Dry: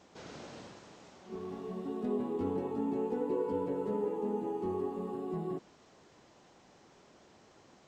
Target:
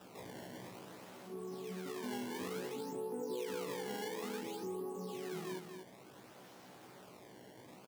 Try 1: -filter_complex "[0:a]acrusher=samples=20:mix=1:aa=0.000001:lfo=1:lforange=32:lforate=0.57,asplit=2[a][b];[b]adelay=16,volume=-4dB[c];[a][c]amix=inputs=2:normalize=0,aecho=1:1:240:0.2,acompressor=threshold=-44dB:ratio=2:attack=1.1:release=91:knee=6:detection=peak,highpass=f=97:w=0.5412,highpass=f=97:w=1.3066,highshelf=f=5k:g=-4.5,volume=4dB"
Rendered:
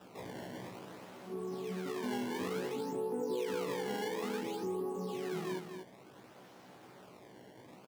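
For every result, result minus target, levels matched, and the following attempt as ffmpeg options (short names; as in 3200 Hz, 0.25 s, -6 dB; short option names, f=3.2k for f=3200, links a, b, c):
compressor: peak gain reduction -5 dB; 8000 Hz band -4.5 dB
-filter_complex "[0:a]acrusher=samples=20:mix=1:aa=0.000001:lfo=1:lforange=32:lforate=0.57,asplit=2[a][b];[b]adelay=16,volume=-4dB[c];[a][c]amix=inputs=2:normalize=0,aecho=1:1:240:0.2,acompressor=threshold=-53.5dB:ratio=2:attack=1.1:release=91:knee=6:detection=peak,highpass=f=97:w=0.5412,highpass=f=97:w=1.3066,highshelf=f=5k:g=-4.5,volume=4dB"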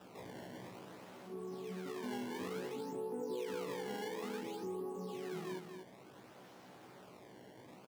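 8000 Hz band -4.0 dB
-filter_complex "[0:a]acrusher=samples=20:mix=1:aa=0.000001:lfo=1:lforange=32:lforate=0.57,asplit=2[a][b];[b]adelay=16,volume=-4dB[c];[a][c]amix=inputs=2:normalize=0,aecho=1:1:240:0.2,acompressor=threshold=-53.5dB:ratio=2:attack=1.1:release=91:knee=6:detection=peak,highpass=f=97:w=0.5412,highpass=f=97:w=1.3066,highshelf=f=5k:g=2,volume=4dB"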